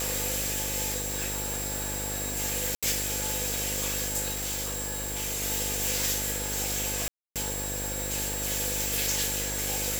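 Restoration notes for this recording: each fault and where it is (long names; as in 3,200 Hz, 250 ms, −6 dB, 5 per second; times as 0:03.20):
mains buzz 50 Hz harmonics 14 −37 dBFS
whistle 7,600 Hz −35 dBFS
0:02.75–0:02.83: drop-out 76 ms
0:04.31–0:05.43: clipping −28 dBFS
0:07.08–0:07.36: drop-out 277 ms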